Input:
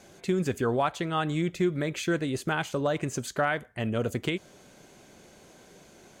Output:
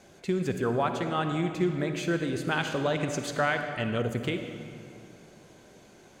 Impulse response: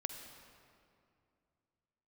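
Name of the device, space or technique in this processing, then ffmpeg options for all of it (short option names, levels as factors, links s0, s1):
swimming-pool hall: -filter_complex "[1:a]atrim=start_sample=2205[s0];[0:a][s0]afir=irnorm=-1:irlink=0,highshelf=f=5400:g=-4.5,asettb=1/sr,asplit=3[s1][s2][s3];[s1]atrim=end=2.514[s4];[s2]atrim=start=2.51:end=4.02,asetpts=PTS-STARTPTS,afade=t=in:d=0.004:c=qsin,afade=t=out:st=1.506:d=0.004:c=qsin,equalizer=f=3400:t=o:w=2.1:g=5.5[s5];[s3]atrim=start=4.016[s6];[s4][s5]acrossfade=d=0.004:c1=hsin:c2=qsin[s7];[s7][s6]acrossfade=d=0.004:c1=qsin:c2=hsin"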